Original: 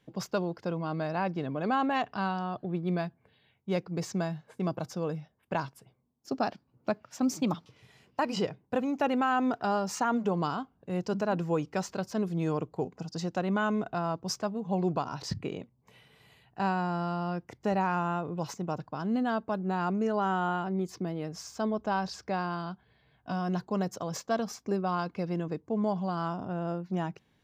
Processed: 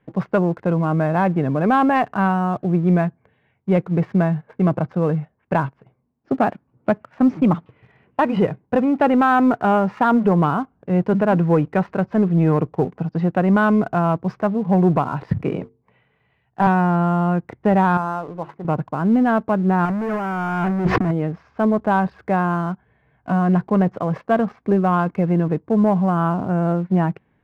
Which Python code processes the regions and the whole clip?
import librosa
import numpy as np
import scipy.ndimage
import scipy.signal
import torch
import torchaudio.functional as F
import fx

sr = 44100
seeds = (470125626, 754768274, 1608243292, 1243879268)

y = fx.chain(x, sr, fx.hum_notches(base_hz=50, count=9),
    fx.band_widen(depth_pct=40), at=(15.42, 16.67))
y = fx.chain(y, sr, fx.lowpass(hz=1100.0, slope=6),
    fx.low_shelf(hz=410.0, db=-11.5),
    fx.hum_notches(base_hz=50, count=7), at=(17.97, 18.65))
y = fx.chain(y, sr, fx.leveller(passes=5),
    fx.over_compress(threshold_db=-29.0, ratio=-0.5), at=(19.85, 21.11))
y = scipy.signal.sosfilt(scipy.signal.butter(4, 2200.0, 'lowpass', fs=sr, output='sos'), y)
y = fx.dynamic_eq(y, sr, hz=150.0, q=1.3, threshold_db=-41.0, ratio=4.0, max_db=4)
y = fx.leveller(y, sr, passes=1)
y = y * librosa.db_to_amplitude(8.0)